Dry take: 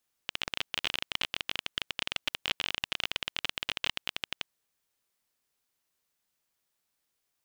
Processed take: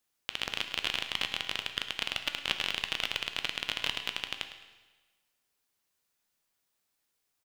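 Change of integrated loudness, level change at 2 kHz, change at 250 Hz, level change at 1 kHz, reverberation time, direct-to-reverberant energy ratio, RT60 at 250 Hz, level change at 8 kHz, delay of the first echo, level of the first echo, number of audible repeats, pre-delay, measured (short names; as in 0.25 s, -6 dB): +1.0 dB, +1.0 dB, +0.5 dB, +1.0 dB, 1.3 s, 6.5 dB, 1.3 s, +1.0 dB, 0.106 s, -13.0 dB, 1, 9 ms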